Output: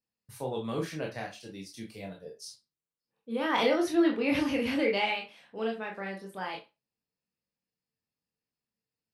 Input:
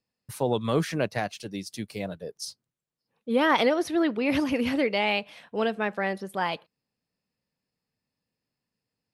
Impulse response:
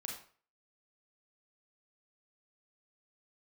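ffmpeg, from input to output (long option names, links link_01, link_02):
-filter_complex "[0:a]asplit=3[link_01][link_02][link_03];[link_01]afade=type=out:start_time=3.53:duration=0.02[link_04];[link_02]acontrast=50,afade=type=in:start_time=3.53:duration=0.02,afade=type=out:start_time=5.08:duration=0.02[link_05];[link_03]afade=type=in:start_time=5.08:duration=0.02[link_06];[link_04][link_05][link_06]amix=inputs=3:normalize=0[link_07];[1:a]atrim=start_sample=2205,asetrate=79380,aresample=44100[link_08];[link_07][link_08]afir=irnorm=-1:irlink=0,volume=-1dB"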